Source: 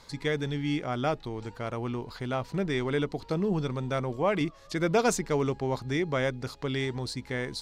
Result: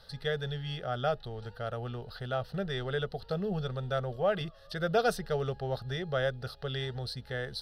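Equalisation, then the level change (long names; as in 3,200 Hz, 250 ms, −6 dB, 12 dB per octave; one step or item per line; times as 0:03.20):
phaser with its sweep stopped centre 1,500 Hz, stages 8
0.0 dB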